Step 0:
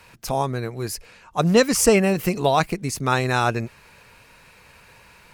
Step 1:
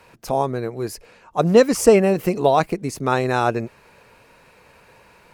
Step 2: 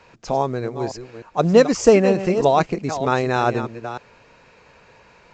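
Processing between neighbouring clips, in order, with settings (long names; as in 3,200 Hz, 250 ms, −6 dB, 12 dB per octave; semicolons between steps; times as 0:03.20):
parametric band 460 Hz +9.5 dB 2.7 octaves; level −5 dB
delay that plays each chunk backwards 306 ms, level −10.5 dB; mu-law 128 kbit/s 16,000 Hz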